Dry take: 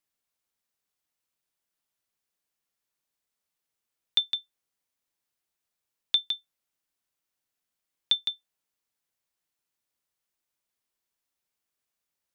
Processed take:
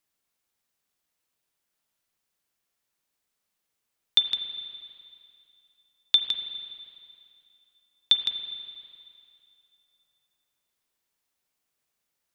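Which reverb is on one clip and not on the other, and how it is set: spring tank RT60 2.5 s, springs 35/40/49 ms, chirp 80 ms, DRR 6.5 dB; trim +4 dB

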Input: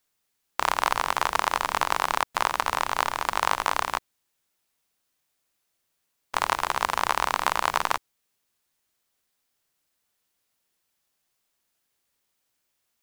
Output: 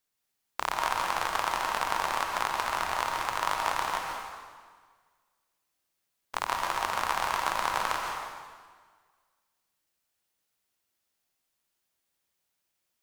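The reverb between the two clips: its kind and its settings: plate-style reverb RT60 1.6 s, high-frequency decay 0.9×, pre-delay 110 ms, DRR 0.5 dB; trim -6.5 dB

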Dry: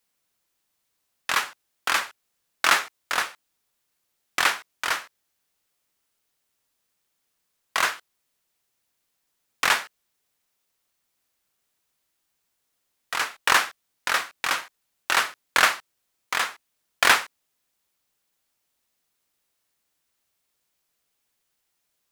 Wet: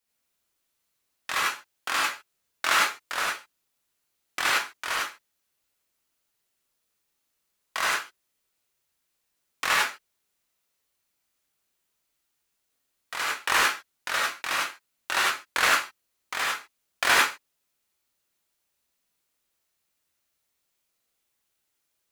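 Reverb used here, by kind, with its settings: gated-style reverb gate 120 ms rising, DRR -4 dB; trim -7 dB

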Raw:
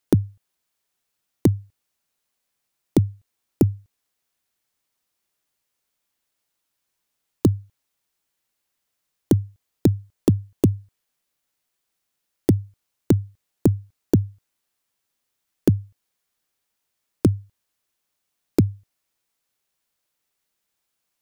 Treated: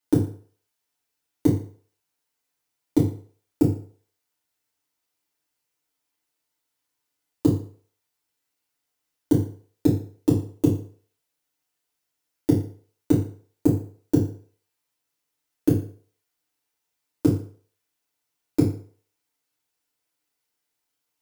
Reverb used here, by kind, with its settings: FDN reverb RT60 0.48 s, low-frequency decay 0.75×, high-frequency decay 0.85×, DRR -7.5 dB; trim -10 dB

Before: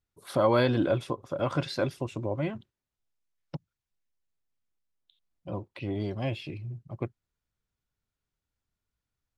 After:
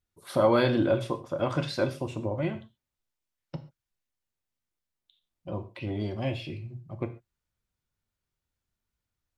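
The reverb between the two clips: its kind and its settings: gated-style reverb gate 160 ms falling, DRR 6.5 dB

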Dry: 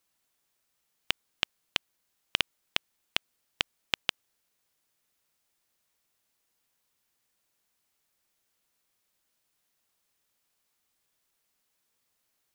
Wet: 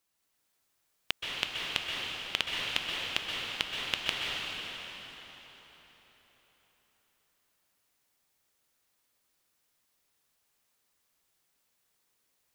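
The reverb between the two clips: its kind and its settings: plate-style reverb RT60 4.4 s, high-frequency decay 0.8×, pre-delay 115 ms, DRR -3.5 dB; trim -3 dB

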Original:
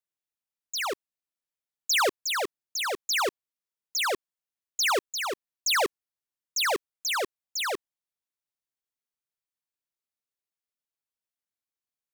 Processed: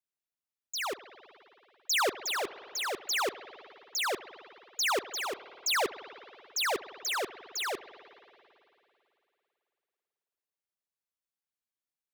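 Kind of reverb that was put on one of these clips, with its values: spring tank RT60 2.9 s, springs 54 ms, chirp 45 ms, DRR 13.5 dB; trim -4 dB

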